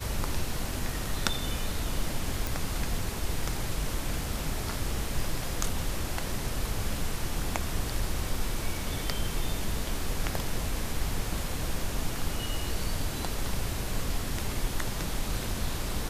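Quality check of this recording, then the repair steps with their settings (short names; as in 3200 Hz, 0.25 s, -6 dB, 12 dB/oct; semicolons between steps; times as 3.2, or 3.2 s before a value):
2.47 pop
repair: de-click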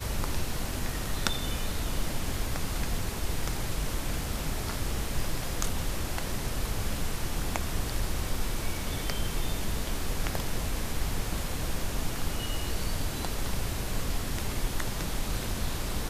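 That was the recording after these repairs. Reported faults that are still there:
none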